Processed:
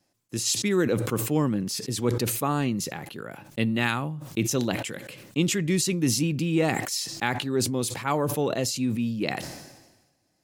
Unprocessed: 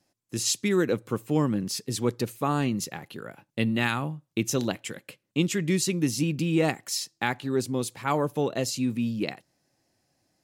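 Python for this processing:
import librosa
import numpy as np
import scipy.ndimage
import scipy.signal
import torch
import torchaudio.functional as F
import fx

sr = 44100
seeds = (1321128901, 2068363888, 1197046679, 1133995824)

y = fx.sustainer(x, sr, db_per_s=50.0)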